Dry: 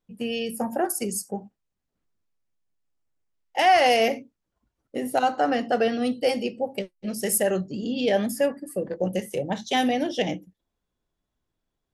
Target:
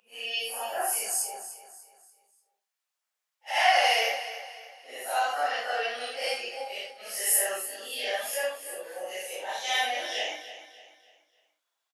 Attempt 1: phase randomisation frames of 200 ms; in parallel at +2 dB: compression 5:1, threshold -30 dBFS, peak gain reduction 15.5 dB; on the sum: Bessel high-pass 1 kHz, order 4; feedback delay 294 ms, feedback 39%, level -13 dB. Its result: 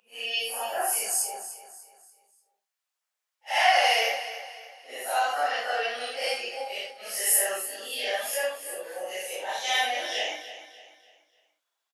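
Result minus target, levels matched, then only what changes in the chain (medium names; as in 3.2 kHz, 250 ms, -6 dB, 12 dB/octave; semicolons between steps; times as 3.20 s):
compression: peak gain reduction -6.5 dB
change: compression 5:1, threshold -38 dBFS, peak gain reduction 21.5 dB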